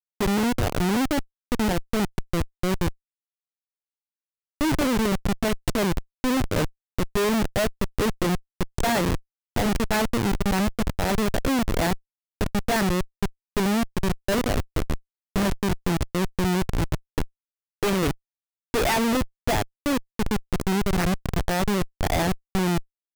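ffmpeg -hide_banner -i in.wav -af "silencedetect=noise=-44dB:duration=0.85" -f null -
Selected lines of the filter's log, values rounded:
silence_start: 2.93
silence_end: 4.61 | silence_duration: 1.68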